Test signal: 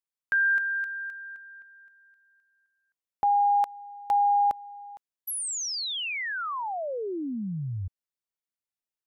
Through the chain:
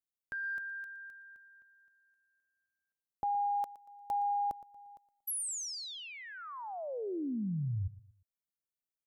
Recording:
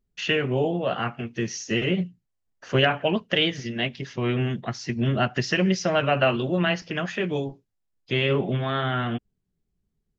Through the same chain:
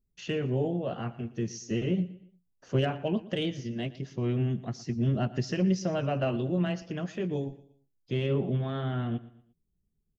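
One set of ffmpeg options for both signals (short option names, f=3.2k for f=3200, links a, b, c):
-af "aecho=1:1:117|234|351:0.126|0.0466|0.0172,acontrast=23,equalizer=f=2k:w=0.38:g=-14,volume=-6.5dB"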